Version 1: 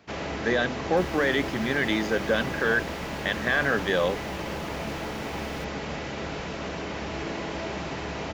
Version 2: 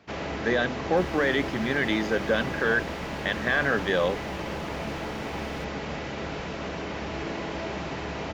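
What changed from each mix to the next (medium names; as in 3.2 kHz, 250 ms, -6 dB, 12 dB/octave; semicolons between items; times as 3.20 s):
master: add treble shelf 7.8 kHz -8 dB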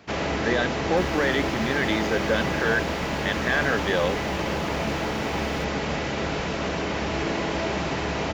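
first sound +6.0 dB; master: add treble shelf 7.8 kHz +8 dB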